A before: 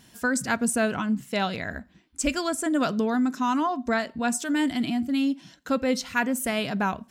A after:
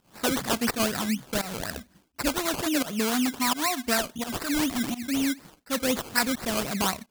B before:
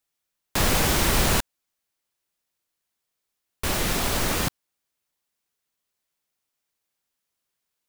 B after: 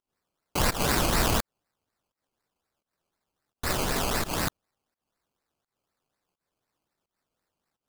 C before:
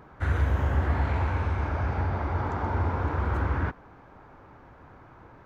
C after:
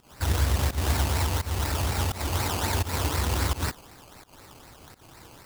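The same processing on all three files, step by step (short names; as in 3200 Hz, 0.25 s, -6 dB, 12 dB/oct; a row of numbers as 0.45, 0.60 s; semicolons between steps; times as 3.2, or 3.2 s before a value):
pump 85 bpm, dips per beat 1, -20 dB, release 0.178 s; decimation with a swept rate 19×, swing 60% 4 Hz; high shelf 2900 Hz +9 dB; match loudness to -27 LUFS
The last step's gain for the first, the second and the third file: -2.5, -4.0, +0.5 dB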